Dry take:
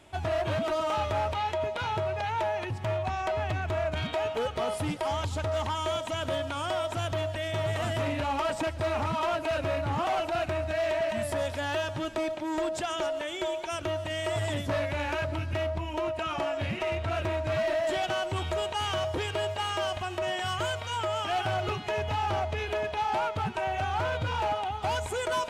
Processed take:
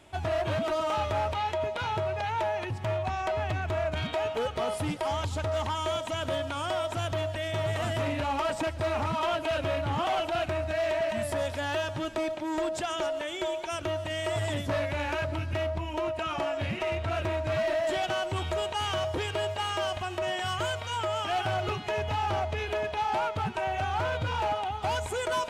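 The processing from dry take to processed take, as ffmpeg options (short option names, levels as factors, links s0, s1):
-filter_complex "[0:a]asettb=1/sr,asplit=3[s0][s1][s2];[s0]atrim=end=9.234[s3];[s1]atrim=start=9.23:end=10.48,asetpts=PTS-STARTPTS,afade=t=in:d=0.004:c=qsin,afade=t=out:st=1.246:d=0.004:c=qsin,equalizer=f=3200:w=6:g=6.5[s4];[s2]atrim=start=10.476[s5];[s3][s4]acrossfade=d=0.004:c1=hsin:c2=qsin[s6];[s6][s5]acrossfade=d=0.004:c1=qsin:c2=hsin"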